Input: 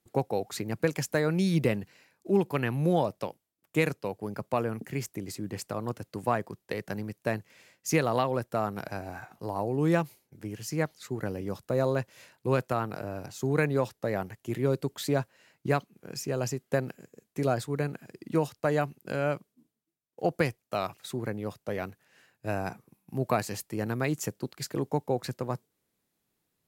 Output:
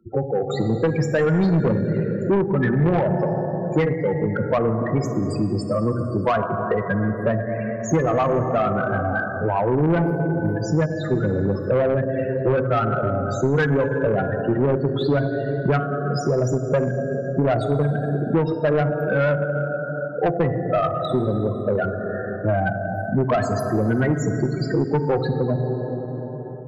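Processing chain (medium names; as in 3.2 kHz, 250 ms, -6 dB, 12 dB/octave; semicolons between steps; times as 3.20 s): peaking EQ 1.5 kHz +5.5 dB 0.66 oct; loudest bins only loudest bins 8; plate-style reverb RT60 2.7 s, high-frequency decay 0.45×, DRR 6 dB; level rider gain up to 9.5 dB; saturation -16 dBFS, distortion -11 dB; 7.96–10.46 s: distance through air 68 m; three bands compressed up and down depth 70%; trim +3 dB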